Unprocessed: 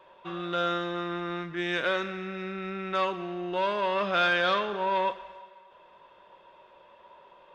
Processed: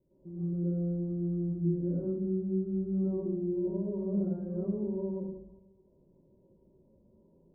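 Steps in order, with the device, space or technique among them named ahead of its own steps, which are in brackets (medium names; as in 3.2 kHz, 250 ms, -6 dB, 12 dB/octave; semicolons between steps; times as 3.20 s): next room (low-pass 270 Hz 24 dB/octave; reverberation RT60 0.75 s, pre-delay 101 ms, DRR -11 dB)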